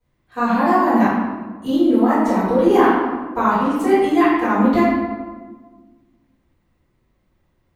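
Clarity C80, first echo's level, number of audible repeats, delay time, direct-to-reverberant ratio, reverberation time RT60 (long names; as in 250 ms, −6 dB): 1.5 dB, no echo audible, no echo audible, no echo audible, −14.5 dB, 1.4 s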